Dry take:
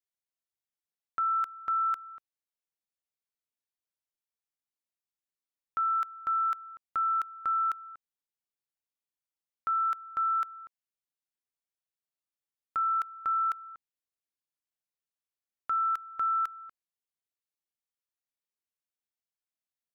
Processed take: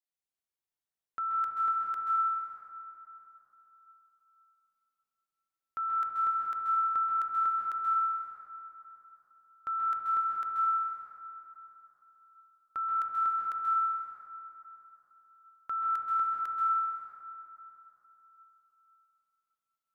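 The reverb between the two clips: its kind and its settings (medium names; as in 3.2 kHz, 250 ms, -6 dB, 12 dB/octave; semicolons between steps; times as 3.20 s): plate-style reverb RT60 3.6 s, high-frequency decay 0.4×, pre-delay 120 ms, DRR -3 dB; trim -5 dB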